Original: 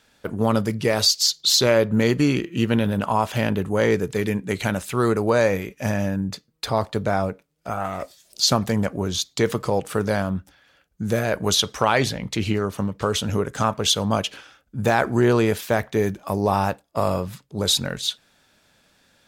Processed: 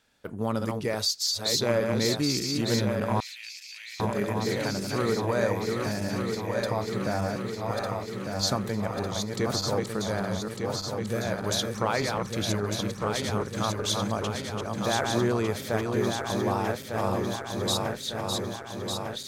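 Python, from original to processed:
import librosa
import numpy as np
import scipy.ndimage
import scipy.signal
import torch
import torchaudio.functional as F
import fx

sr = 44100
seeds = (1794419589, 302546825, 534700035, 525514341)

y = fx.reverse_delay_fb(x, sr, ms=601, feedback_pct=79, wet_db=-4)
y = fx.ladder_highpass(y, sr, hz=2200.0, resonance_pct=60, at=(3.2, 4.0))
y = fx.dynamic_eq(y, sr, hz=2900.0, q=4.8, threshold_db=-43.0, ratio=4.0, max_db=-6)
y = F.gain(torch.from_numpy(y), -8.5).numpy()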